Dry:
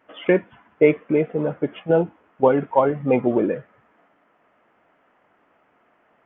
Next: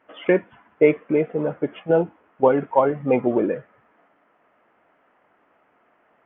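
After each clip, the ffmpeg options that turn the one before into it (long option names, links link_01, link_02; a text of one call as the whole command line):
ffmpeg -i in.wav -af "bass=frequency=250:gain=-3,treble=frequency=4000:gain=-9" out.wav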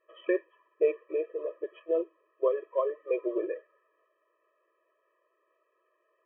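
ffmpeg -i in.wav -af "afftfilt=real='re*eq(mod(floor(b*sr/1024/330),2),1)':imag='im*eq(mod(floor(b*sr/1024/330),2),1)':win_size=1024:overlap=0.75,volume=-9dB" out.wav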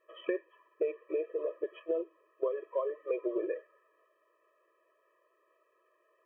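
ffmpeg -i in.wav -af "acompressor=threshold=-31dB:ratio=6,volume=2dB" out.wav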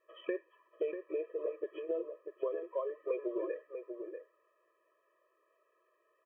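ffmpeg -i in.wav -filter_complex "[0:a]asplit=2[link_01][link_02];[link_02]adelay=641.4,volume=-7dB,highshelf=frequency=4000:gain=-14.4[link_03];[link_01][link_03]amix=inputs=2:normalize=0,volume=-3.5dB" out.wav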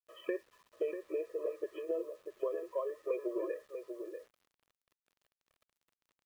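ffmpeg -i in.wav -af "acrusher=bits=10:mix=0:aa=0.000001" out.wav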